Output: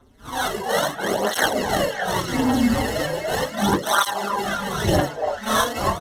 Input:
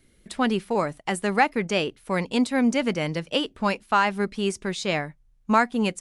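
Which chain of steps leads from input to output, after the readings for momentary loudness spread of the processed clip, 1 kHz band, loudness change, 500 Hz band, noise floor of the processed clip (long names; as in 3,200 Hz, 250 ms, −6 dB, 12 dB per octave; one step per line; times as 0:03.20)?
6 LU, +3.0 dB, +2.5 dB, +3.0 dB, −37 dBFS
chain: random phases in long frames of 200 ms
harmonic and percussive parts rebalanced harmonic −8 dB
low-shelf EQ 330 Hz −6 dB
in parallel at −0.5 dB: brickwall limiter −21.5 dBFS, peak gain reduction 9 dB
on the sum: sample-rate reduction 2,400 Hz, jitter 0%
single-tap delay 388 ms −23.5 dB
phase shifter 0.8 Hz, delay 1.9 ms, feedback 57%
on a send: echo through a band-pass that steps 288 ms, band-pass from 740 Hz, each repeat 1.4 octaves, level −2 dB
on the sum: downsampling to 32,000 Hz
through-zero flanger with one copy inverted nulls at 0.37 Hz, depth 6.5 ms
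level +5.5 dB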